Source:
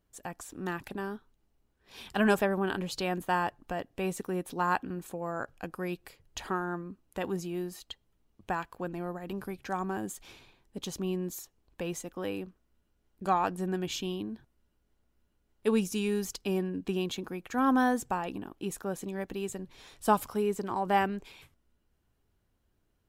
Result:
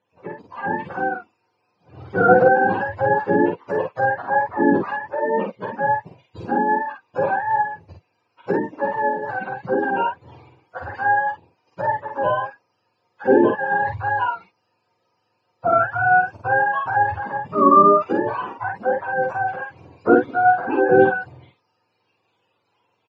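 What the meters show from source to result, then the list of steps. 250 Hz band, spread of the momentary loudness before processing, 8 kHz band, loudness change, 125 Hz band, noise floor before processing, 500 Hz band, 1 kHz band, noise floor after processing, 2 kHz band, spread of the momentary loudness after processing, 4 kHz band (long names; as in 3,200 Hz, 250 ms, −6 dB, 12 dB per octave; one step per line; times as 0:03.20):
+8.0 dB, 15 LU, below −25 dB, +13.0 dB, +6.0 dB, −75 dBFS, +13.5 dB, +15.0 dB, −70 dBFS, +16.0 dB, 13 LU, can't be measured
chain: frequency axis turned over on the octave scale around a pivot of 550 Hz
parametric band 960 Hz +11 dB 0.32 octaves
automatic gain control gain up to 5 dB
loudspeaker in its box 170–4,500 Hz, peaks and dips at 520 Hz +10 dB, 2,600 Hz +8 dB, 3,700 Hz −5 dB
double-tracking delay 49 ms −3.5 dB
level +4.5 dB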